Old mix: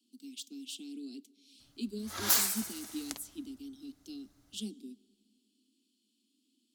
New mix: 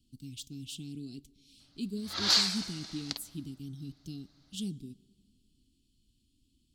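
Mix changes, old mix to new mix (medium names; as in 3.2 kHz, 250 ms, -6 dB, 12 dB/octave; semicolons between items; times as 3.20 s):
speech: remove steep high-pass 210 Hz 96 dB/octave; background: add resonant low-pass 4.4 kHz, resonance Q 4.3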